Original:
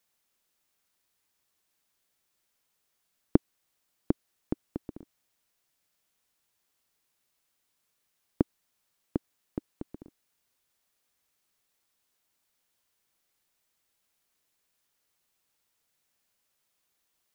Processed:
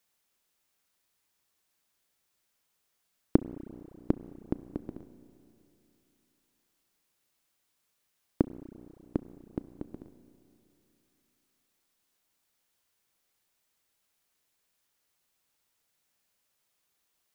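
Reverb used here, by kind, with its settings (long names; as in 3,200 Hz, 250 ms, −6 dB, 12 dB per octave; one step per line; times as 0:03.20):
spring reverb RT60 3 s, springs 31/35 ms, chirp 30 ms, DRR 13.5 dB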